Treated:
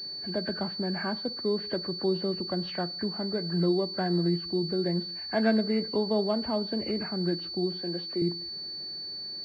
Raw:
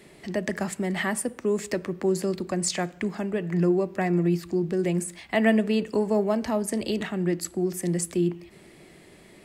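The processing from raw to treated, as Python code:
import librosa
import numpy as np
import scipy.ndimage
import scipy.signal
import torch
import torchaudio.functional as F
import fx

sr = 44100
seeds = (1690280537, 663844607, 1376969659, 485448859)

y = fx.freq_compress(x, sr, knee_hz=1200.0, ratio=1.5)
y = fx.highpass(y, sr, hz=280.0, slope=12, at=(7.82, 8.22))
y = fx.pwm(y, sr, carrier_hz=4500.0)
y = F.gain(torch.from_numpy(y), -3.5).numpy()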